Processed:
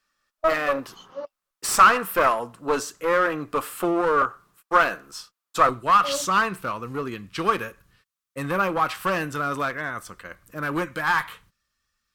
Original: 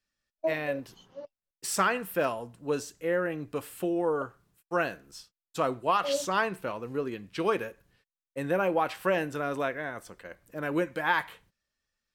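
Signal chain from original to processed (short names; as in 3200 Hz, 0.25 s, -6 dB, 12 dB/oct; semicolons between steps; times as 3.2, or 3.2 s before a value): bell 69 Hz -9 dB 2.9 oct, from 5.69 s 650 Hz; one-sided clip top -32.5 dBFS; bell 1200 Hz +12 dB 0.56 oct; gain +8.5 dB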